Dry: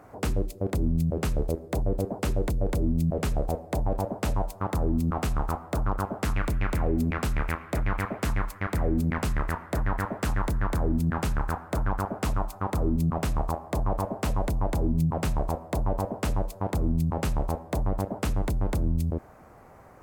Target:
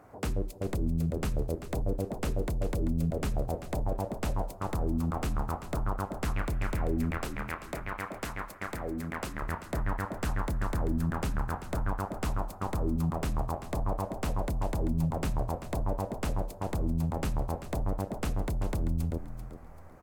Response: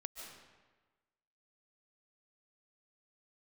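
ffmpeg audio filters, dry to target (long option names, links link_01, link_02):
-filter_complex "[0:a]asettb=1/sr,asplit=3[link_01][link_02][link_03];[link_01]atrim=end=7.184[link_04];[link_02]atrim=start=7.18:end=9.42,asetpts=PTS-STARTPTS,afade=type=in:duration=0.004:curve=qsin,afade=type=out:start_time=2.236:duration=0.004:curve=qsin,lowshelf=frequency=200:gain=-12[link_05];[link_03]atrim=start=9.416[link_06];[link_04][link_05]acrossfade=duration=0.004:curve1=hsin:curve2=qsin[link_07];[link_07][link_06]acrossfade=duration=0.004:curve1=qsin:curve2=hsin,asplit=4[link_08][link_09][link_10][link_11];[link_09]adelay=389,afreqshift=-41,volume=-11dB[link_12];[link_10]adelay=778,afreqshift=-82,volume=-21.2dB[link_13];[link_11]adelay=1167,afreqshift=-123,volume=-31.3dB[link_14];[link_08][link_12][link_13][link_14]amix=inputs=4:normalize=0,volume=-4.5dB"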